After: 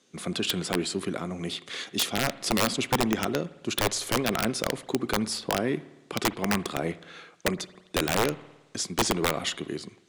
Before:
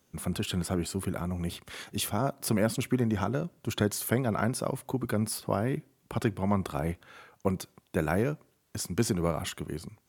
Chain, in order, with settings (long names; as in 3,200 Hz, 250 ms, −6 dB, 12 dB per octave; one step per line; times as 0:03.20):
loudspeaker in its box 260–8,300 Hz, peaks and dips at 600 Hz −4 dB, 890 Hz −8 dB, 1,400 Hz −4 dB, 3,800 Hz +5 dB
wrap-around overflow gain 22 dB
spring reverb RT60 1.1 s, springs 54 ms, chirp 30 ms, DRR 17.5 dB
level +6.5 dB